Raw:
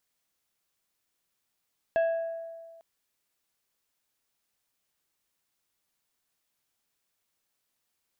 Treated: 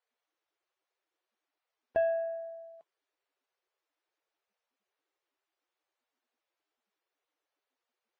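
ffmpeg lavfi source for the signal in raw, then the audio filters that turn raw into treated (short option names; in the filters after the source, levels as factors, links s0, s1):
-f lavfi -i "aevalsrc='0.0944*pow(10,-3*t/1.73)*sin(2*PI*662*t)+0.0237*pow(10,-3*t/0.911)*sin(2*PI*1655*t)+0.00596*pow(10,-3*t/0.656)*sin(2*PI*2648*t)+0.0015*pow(10,-3*t/0.561)*sin(2*PI*3310*t)+0.000376*pow(10,-3*t/0.467)*sin(2*PI*4303*t)':d=0.85:s=44100"
-af "lowpass=f=1400:p=1,equalizer=f=89:w=5.4:g=10" -ar 22050 -c:a libvorbis -b:a 32k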